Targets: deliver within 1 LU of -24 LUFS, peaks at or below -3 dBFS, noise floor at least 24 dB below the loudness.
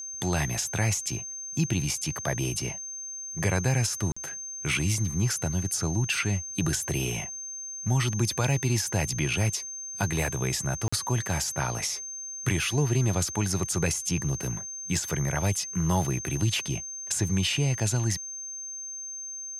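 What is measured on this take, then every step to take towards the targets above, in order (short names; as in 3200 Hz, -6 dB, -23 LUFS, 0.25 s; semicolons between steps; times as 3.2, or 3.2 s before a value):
dropouts 2; longest dropout 45 ms; steady tone 6300 Hz; tone level -35 dBFS; loudness -28.0 LUFS; peak -12.5 dBFS; loudness target -24.0 LUFS
-> interpolate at 4.12/10.88, 45 ms; notch 6300 Hz, Q 30; gain +4 dB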